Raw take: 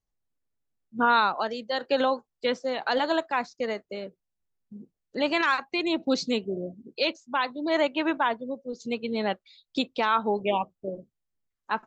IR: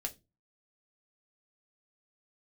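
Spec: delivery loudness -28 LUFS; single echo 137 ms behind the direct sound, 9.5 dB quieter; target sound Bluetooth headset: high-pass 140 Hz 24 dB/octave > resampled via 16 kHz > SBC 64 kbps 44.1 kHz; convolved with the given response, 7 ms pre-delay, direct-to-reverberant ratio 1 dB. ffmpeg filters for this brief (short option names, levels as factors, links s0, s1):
-filter_complex "[0:a]aecho=1:1:137:0.335,asplit=2[s0][s1];[1:a]atrim=start_sample=2205,adelay=7[s2];[s1][s2]afir=irnorm=-1:irlink=0,volume=0.891[s3];[s0][s3]amix=inputs=2:normalize=0,highpass=f=140:w=0.5412,highpass=f=140:w=1.3066,aresample=16000,aresample=44100,volume=0.668" -ar 44100 -c:a sbc -b:a 64k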